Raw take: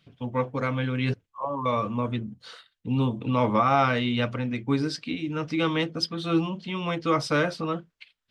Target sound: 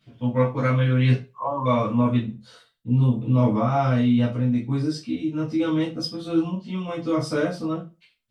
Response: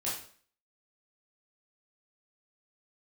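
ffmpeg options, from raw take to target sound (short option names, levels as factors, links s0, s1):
-filter_complex "[0:a]asetnsamples=n=441:p=0,asendcmd='2.31 equalizer g -13.5',equalizer=f=2000:w=0.34:g=-3[s0];[1:a]atrim=start_sample=2205,asetrate=79380,aresample=44100[s1];[s0][s1]afir=irnorm=-1:irlink=0,volume=2.11"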